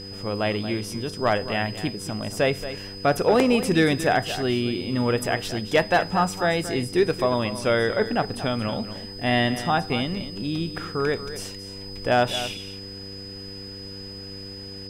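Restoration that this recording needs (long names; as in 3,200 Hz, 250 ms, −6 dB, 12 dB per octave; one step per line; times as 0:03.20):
hum removal 97.6 Hz, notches 5
notch filter 5,000 Hz, Q 30
echo removal 228 ms −12.5 dB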